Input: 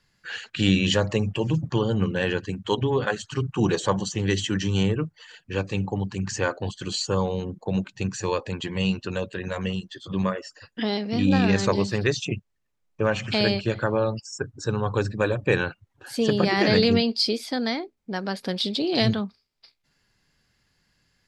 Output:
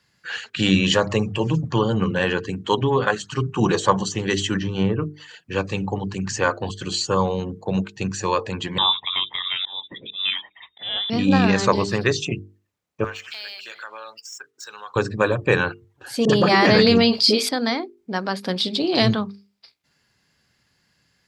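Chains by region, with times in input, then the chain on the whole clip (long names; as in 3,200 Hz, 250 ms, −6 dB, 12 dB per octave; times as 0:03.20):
0:04.59–0:05.02: low-pass filter 5,600 Hz 24 dB per octave + high-shelf EQ 2,300 Hz −10.5 dB
0:08.78–0:11.10: volume swells 232 ms + voice inversion scrambler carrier 3,700 Hz
0:13.04–0:14.96: running median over 3 samples + high-pass filter 1,500 Hz + downward compressor 3 to 1, threshold −37 dBFS
0:16.25–0:17.49: all-pass dispersion highs, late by 42 ms, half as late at 610 Hz + envelope flattener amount 50%
whole clip: high-pass filter 74 Hz; mains-hum notches 50/100/150/200/250/300/350/400/450 Hz; dynamic equaliser 1,100 Hz, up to +6 dB, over −43 dBFS, Q 2.2; level +3.5 dB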